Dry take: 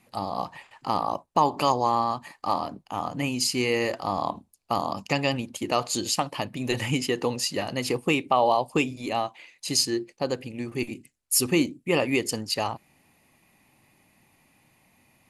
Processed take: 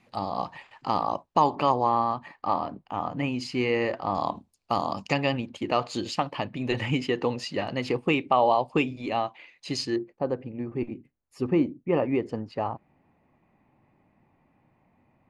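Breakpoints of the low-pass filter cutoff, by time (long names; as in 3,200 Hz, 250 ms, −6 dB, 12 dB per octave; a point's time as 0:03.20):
5,000 Hz
from 0:01.55 2,600 Hz
from 0:04.15 6,000 Hz
from 0:05.14 3,200 Hz
from 0:09.96 1,200 Hz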